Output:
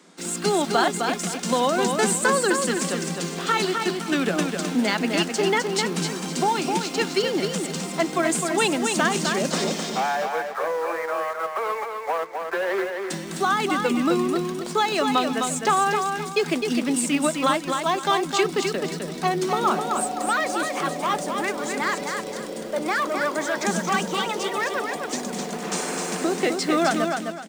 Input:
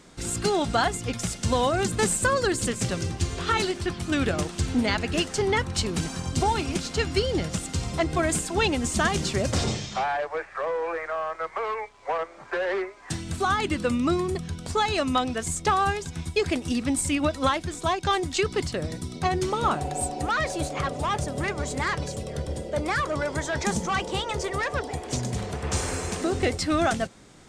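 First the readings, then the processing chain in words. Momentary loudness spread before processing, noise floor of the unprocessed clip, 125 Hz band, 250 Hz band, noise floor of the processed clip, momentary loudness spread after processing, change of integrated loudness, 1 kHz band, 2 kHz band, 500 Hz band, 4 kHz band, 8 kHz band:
7 LU, -45 dBFS, -5.0 dB, +3.0 dB, -33 dBFS, 7 LU, +3.0 dB, +3.5 dB, +3.5 dB, +3.0 dB, +3.0 dB, +3.0 dB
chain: Chebyshev high-pass 160 Hz, order 10; in parallel at -9.5 dB: word length cut 6-bit, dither none; on the sum: feedback delay 258 ms, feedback 30%, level -5 dB

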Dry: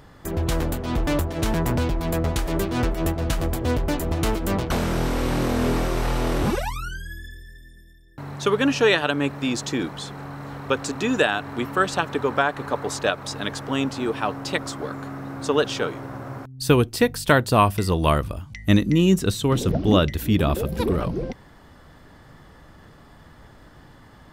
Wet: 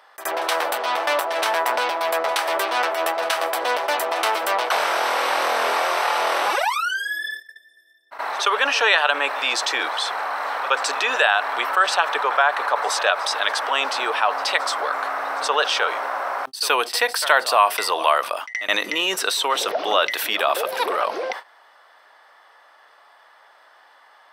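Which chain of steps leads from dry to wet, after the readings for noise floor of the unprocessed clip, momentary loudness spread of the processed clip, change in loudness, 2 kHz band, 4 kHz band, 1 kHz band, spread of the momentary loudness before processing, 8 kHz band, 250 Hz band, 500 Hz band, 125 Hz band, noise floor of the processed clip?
-49 dBFS, 7 LU, +2.5 dB, +7.5 dB, +7.5 dB, +8.0 dB, 14 LU, +4.5 dB, -17.0 dB, 0.0 dB, under -35 dB, -53 dBFS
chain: high-pass 670 Hz 24 dB/octave; gate -46 dBFS, range -39 dB; treble shelf 5.8 kHz -9.5 dB; band-stop 6.9 kHz, Q 6.6; pre-echo 73 ms -22 dB; level flattener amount 50%; trim +2.5 dB

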